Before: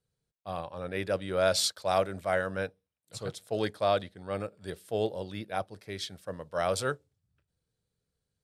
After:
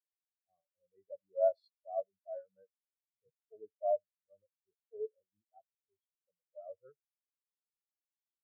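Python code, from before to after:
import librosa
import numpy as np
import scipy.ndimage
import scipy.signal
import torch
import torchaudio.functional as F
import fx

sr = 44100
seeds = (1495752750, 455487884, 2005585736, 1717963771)

p1 = x + fx.echo_single(x, sr, ms=78, db=-15.0, dry=0)
p2 = fx.spectral_expand(p1, sr, expansion=4.0)
y = p2 * 10.0 ** (-7.0 / 20.0)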